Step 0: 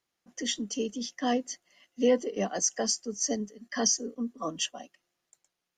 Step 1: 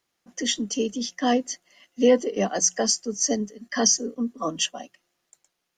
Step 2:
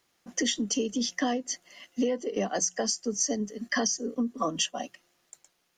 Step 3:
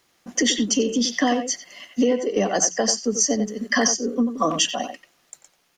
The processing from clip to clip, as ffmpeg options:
-af "bandreject=f=60:t=h:w=6,bandreject=f=120:t=h:w=6,bandreject=f=180:t=h:w=6,volume=6dB"
-af "acompressor=threshold=-30dB:ratio=16,volume=5.5dB"
-filter_complex "[0:a]asplit=2[a][b];[b]adelay=90,highpass=300,lowpass=3.4k,asoftclip=type=hard:threshold=-21.5dB,volume=-7dB[c];[a][c]amix=inputs=2:normalize=0,volume=7.5dB"

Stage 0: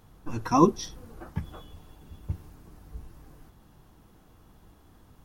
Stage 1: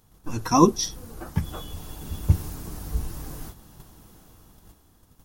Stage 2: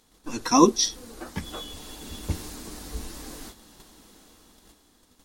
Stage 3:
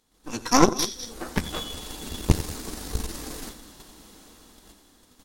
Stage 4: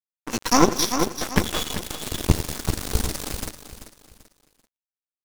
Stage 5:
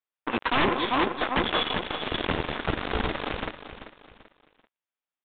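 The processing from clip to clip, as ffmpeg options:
-af "bass=f=250:g=1,treble=f=4k:g=10,agate=range=-8dB:threshold=-51dB:ratio=16:detection=peak,dynaudnorm=f=210:g=9:m=11dB,volume=2dB"
-af "equalizer=f=125:t=o:w=1:g=-10,equalizer=f=250:t=o:w=1:g=9,equalizer=f=500:t=o:w=1:g=6,equalizer=f=1k:t=o:w=1:g=3,equalizer=f=2k:t=o:w=1:g=8,equalizer=f=4k:t=o:w=1:g=11,equalizer=f=8k:t=o:w=1:g=9,volume=-7dB"
-af "aecho=1:1:89|202:0.237|0.2,dynaudnorm=f=150:g=3:m=11dB,aeval=exprs='0.944*(cos(1*acos(clip(val(0)/0.944,-1,1)))-cos(1*PI/2))+0.266*(cos(4*acos(clip(val(0)/0.944,-1,1)))-cos(4*PI/2))+0.0596*(cos(7*acos(clip(val(0)/0.944,-1,1)))-cos(7*PI/2))':c=same,volume=-3dB"
-af "acrusher=bits=4:mix=0:aa=0.5,aecho=1:1:388|776|1164:0.251|0.0854|0.029,alimiter=limit=-7dB:level=0:latency=1:release=384,volume=6dB"
-filter_complex "[0:a]asplit=2[a][b];[b]highpass=f=720:p=1,volume=14dB,asoftclip=type=tanh:threshold=-0.5dB[c];[a][c]amix=inputs=2:normalize=0,lowpass=f=2.1k:p=1,volume=-6dB,aeval=exprs='0.178*(abs(mod(val(0)/0.178+3,4)-2)-1)':c=same,aresample=8000,aresample=44100"

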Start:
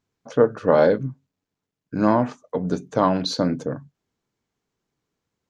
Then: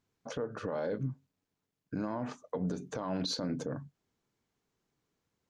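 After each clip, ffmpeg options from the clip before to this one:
-af "acompressor=threshold=-22dB:ratio=4,alimiter=limit=-23.5dB:level=0:latency=1:release=76,volume=-2dB"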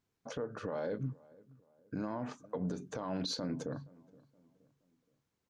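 -filter_complex "[0:a]asplit=2[a][b];[b]adelay=472,lowpass=f=1.3k:p=1,volume=-23dB,asplit=2[c][d];[d]adelay=472,lowpass=f=1.3k:p=1,volume=0.44,asplit=2[e][f];[f]adelay=472,lowpass=f=1.3k:p=1,volume=0.44[g];[a][c][e][g]amix=inputs=4:normalize=0,volume=-2.5dB"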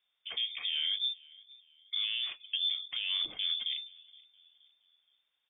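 -af "lowpass=f=3.1k:t=q:w=0.5098,lowpass=f=3.1k:t=q:w=0.6013,lowpass=f=3.1k:t=q:w=0.9,lowpass=f=3.1k:t=q:w=2.563,afreqshift=-3700,volume=4dB"

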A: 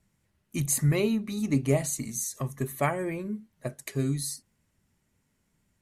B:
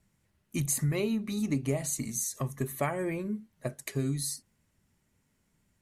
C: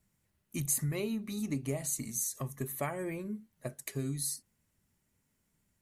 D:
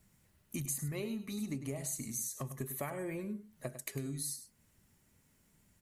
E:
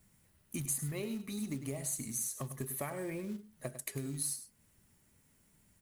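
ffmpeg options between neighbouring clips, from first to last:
-af "acompressor=threshold=-26dB:ratio=4"
-af "highshelf=f=10k:g=10,volume=-5dB"
-af "acompressor=threshold=-49dB:ratio=2.5,aecho=1:1:101:0.266,volume=7dB"
-af "aexciter=amount=1.7:drive=2:freq=9k,acrusher=bits=5:mode=log:mix=0:aa=0.000001"

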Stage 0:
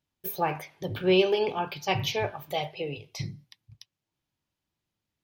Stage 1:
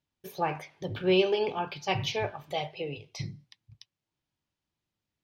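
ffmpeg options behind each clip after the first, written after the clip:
-af "lowpass=7.8k,volume=-2dB"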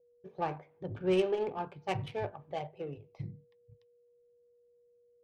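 -af "adynamicsmooth=sensitivity=1.5:basefreq=920,aeval=exprs='val(0)+0.001*sin(2*PI*480*n/s)':c=same,adynamicequalizer=threshold=0.00562:dfrequency=2100:dqfactor=0.7:tfrequency=2100:tqfactor=0.7:attack=5:release=100:ratio=0.375:range=2:mode=cutabove:tftype=highshelf,volume=-4dB"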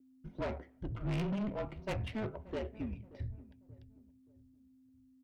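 -filter_complex "[0:a]afreqshift=-220,asoftclip=type=tanh:threshold=-35dB,asplit=2[a][b];[b]adelay=579,lowpass=f=940:p=1,volume=-18dB,asplit=2[c][d];[d]adelay=579,lowpass=f=940:p=1,volume=0.42,asplit=2[e][f];[f]adelay=579,lowpass=f=940:p=1,volume=0.42[g];[a][c][e][g]amix=inputs=4:normalize=0,volume=3dB"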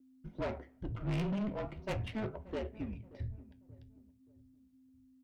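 -af "flanger=delay=3.6:depth=8.9:regen=-75:speed=0.4:shape=triangular,volume=4.5dB"

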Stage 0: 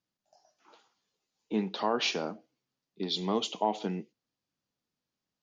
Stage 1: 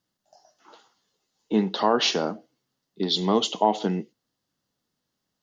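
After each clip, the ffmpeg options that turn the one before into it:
-af "bandreject=f=2.4k:w=5.9,volume=8dB"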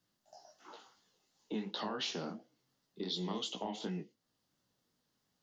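-filter_complex "[0:a]acrossover=split=280|1600[a][b][c];[a]acompressor=threshold=-32dB:ratio=4[d];[b]acompressor=threshold=-34dB:ratio=4[e];[c]acompressor=threshold=-27dB:ratio=4[f];[d][e][f]amix=inputs=3:normalize=0,flanger=delay=16:depth=7.3:speed=2.8,acompressor=threshold=-54dB:ratio=1.5,volume=2.5dB"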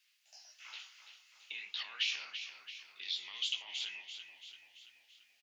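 -filter_complex "[0:a]alimiter=level_in=12dB:limit=-24dB:level=0:latency=1:release=189,volume=-12dB,highpass=f=2.4k:t=q:w=5.9,asplit=7[a][b][c][d][e][f][g];[b]adelay=336,afreqshift=-34,volume=-9.5dB[h];[c]adelay=672,afreqshift=-68,volume=-14.7dB[i];[d]adelay=1008,afreqshift=-102,volume=-19.9dB[j];[e]adelay=1344,afreqshift=-136,volume=-25.1dB[k];[f]adelay=1680,afreqshift=-170,volume=-30.3dB[l];[g]adelay=2016,afreqshift=-204,volume=-35.5dB[m];[a][h][i][j][k][l][m]amix=inputs=7:normalize=0,volume=6dB"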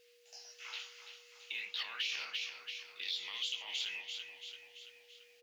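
-af "alimiter=level_in=7dB:limit=-24dB:level=0:latency=1:release=96,volume=-7dB,aeval=exprs='val(0)+0.000355*sin(2*PI*480*n/s)':c=same,acrusher=bits=8:mode=log:mix=0:aa=0.000001,volume=4dB"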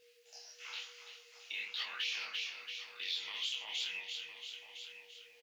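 -af "flanger=delay=22.5:depth=7.6:speed=1,aecho=1:1:1009:0.237,volume=3dB"

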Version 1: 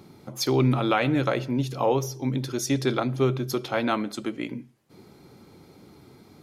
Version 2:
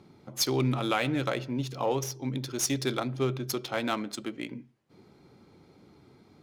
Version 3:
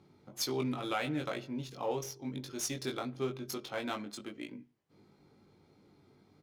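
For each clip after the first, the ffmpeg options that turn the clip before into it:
-af "aemphasis=mode=production:type=75fm,adynamicsmooth=sensitivity=4.5:basefreq=3k,volume=-5dB"
-filter_complex "[0:a]asplit=2[a][b];[b]adelay=20,volume=-4dB[c];[a][c]amix=inputs=2:normalize=0,volume=-8.5dB"

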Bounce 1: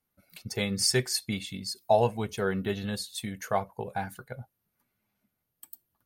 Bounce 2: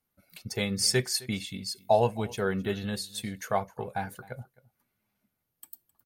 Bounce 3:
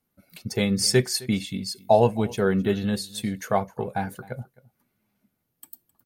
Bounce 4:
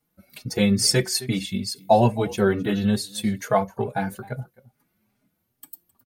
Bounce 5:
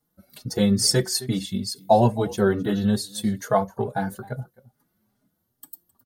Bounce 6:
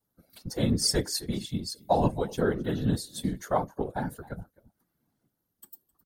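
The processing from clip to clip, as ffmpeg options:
-af "aecho=1:1:262:0.0841"
-af "equalizer=f=240:t=o:w=2.2:g=6.5,volume=2.5dB"
-filter_complex "[0:a]asplit=2[a][b];[b]adelay=4.4,afreqshift=2.3[c];[a][c]amix=inputs=2:normalize=1,volume=5.5dB"
-af "equalizer=f=2.4k:t=o:w=0.38:g=-14"
-af "afftfilt=real='hypot(re,im)*cos(2*PI*random(0))':imag='hypot(re,im)*sin(2*PI*random(1))':win_size=512:overlap=0.75"

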